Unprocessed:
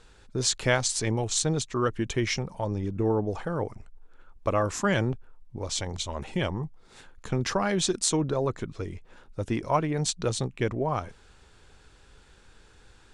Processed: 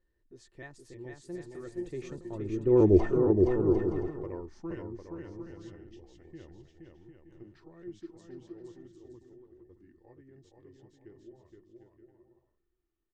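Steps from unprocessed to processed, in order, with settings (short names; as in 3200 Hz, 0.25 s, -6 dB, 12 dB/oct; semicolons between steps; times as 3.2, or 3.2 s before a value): trilling pitch shifter -1.5 st, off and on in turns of 0.35 s; Doppler pass-by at 2.95, 38 m/s, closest 2.6 m; tilt -2 dB/oct; small resonant body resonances 350/1800 Hz, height 18 dB, ringing for 65 ms; on a send: bouncing-ball echo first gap 0.47 s, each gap 0.6×, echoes 5; on the sum: gain +2.5 dB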